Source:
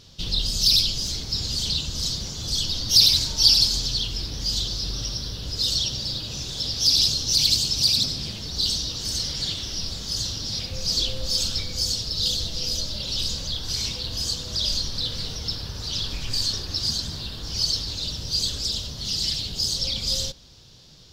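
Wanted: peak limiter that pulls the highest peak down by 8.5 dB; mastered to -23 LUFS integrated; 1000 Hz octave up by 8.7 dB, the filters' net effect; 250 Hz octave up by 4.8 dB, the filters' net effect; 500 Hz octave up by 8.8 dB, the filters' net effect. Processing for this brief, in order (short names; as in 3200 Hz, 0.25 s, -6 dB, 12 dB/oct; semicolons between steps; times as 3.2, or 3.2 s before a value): bell 250 Hz +4.5 dB; bell 500 Hz +7 dB; bell 1000 Hz +8.5 dB; gain +0.5 dB; limiter -11 dBFS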